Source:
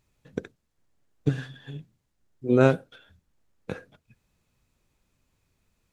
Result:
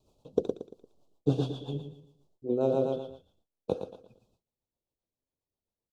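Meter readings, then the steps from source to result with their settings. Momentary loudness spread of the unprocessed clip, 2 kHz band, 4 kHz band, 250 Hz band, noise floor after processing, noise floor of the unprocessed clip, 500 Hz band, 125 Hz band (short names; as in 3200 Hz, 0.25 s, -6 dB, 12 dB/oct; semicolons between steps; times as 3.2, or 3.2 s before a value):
22 LU, under -20 dB, -1.5 dB, -5.0 dB, under -85 dBFS, -76 dBFS, -2.5 dB, -5.5 dB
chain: in parallel at -1 dB: vocal rider within 5 dB 2 s; on the sum: tone controls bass -11 dB, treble -12 dB; feedback echo 0.115 s, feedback 36%, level -9 dB; reverse; compressor 8:1, threshold -26 dBFS, peak gain reduction 16.5 dB; reverse; gate with hold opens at -60 dBFS; Chebyshev band-stop 840–4000 Hz, order 2; rotary speaker horn 7.5 Hz; gain +5.5 dB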